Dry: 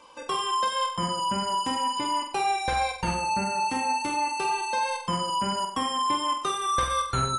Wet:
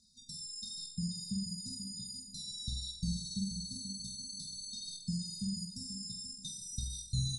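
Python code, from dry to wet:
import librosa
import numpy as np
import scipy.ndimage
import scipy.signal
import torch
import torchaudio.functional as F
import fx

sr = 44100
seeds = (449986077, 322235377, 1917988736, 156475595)

y = fx.brickwall_bandstop(x, sr, low_hz=240.0, high_hz=3600.0)
y = fx.high_shelf(y, sr, hz=7900.0, db=-6.0)
y = fx.echo_feedback(y, sr, ms=483, feedback_pct=25, wet_db=-10.0)
y = F.gain(torch.from_numpy(y), -3.0).numpy()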